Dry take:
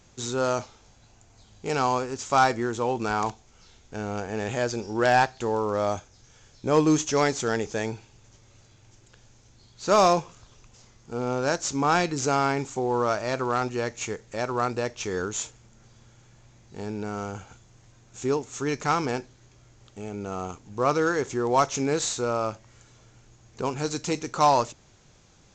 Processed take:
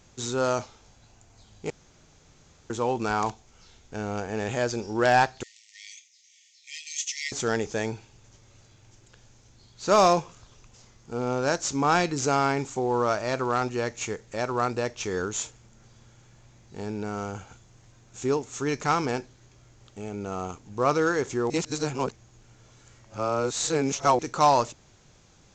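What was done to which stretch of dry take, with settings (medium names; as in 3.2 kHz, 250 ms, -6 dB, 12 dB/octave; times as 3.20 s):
1.70–2.70 s: room tone
5.43–7.32 s: brick-wall FIR high-pass 1.8 kHz
21.50–24.19 s: reverse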